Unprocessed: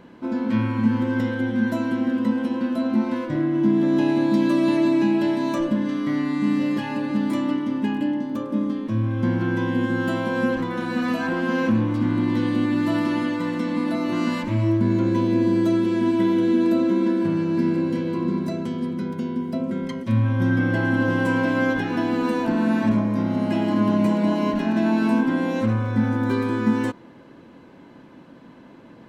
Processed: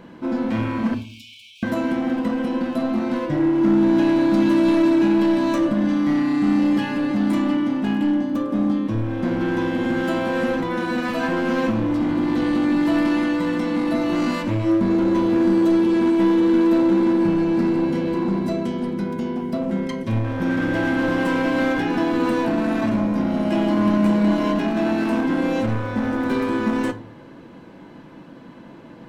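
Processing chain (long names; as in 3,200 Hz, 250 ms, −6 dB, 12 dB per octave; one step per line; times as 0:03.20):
in parallel at −6.5 dB: wave folding −23 dBFS
0:00.94–0:01.63: on the sum: linear-phase brick-wall high-pass 2,200 Hz
rectangular room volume 300 cubic metres, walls furnished, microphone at 0.67 metres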